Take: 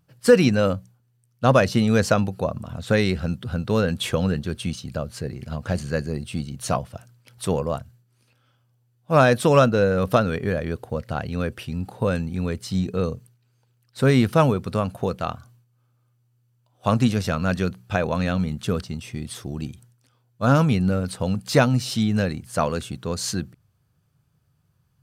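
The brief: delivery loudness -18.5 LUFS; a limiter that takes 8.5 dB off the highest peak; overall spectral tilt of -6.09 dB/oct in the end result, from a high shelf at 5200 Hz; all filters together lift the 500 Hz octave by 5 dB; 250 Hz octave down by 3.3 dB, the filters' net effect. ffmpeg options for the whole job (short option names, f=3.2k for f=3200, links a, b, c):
-af "equalizer=f=250:t=o:g=-6,equalizer=f=500:t=o:g=7,highshelf=f=5.2k:g=-8,volume=4.5dB,alimiter=limit=-4dB:level=0:latency=1"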